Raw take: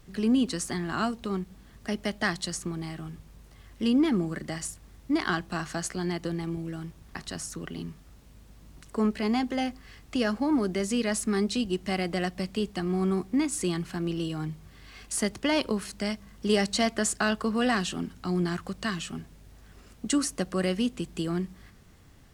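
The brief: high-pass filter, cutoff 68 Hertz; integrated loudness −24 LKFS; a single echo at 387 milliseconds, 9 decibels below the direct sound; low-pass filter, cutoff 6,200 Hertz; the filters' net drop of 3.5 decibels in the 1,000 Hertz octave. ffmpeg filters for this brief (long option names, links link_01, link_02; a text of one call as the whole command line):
ffmpeg -i in.wav -af "highpass=68,lowpass=6200,equalizer=frequency=1000:width_type=o:gain=-5,aecho=1:1:387:0.355,volume=6dB" out.wav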